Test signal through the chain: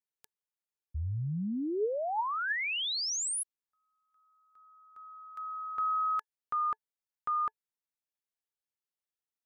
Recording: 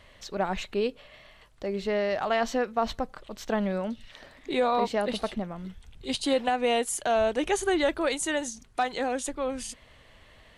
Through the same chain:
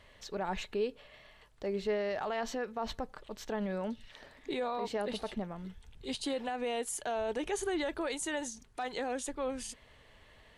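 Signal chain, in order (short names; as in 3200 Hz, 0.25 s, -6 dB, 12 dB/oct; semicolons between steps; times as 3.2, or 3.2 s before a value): limiter -22 dBFS; small resonant body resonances 430/890/1700 Hz, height 6 dB, ringing for 65 ms; gain -5 dB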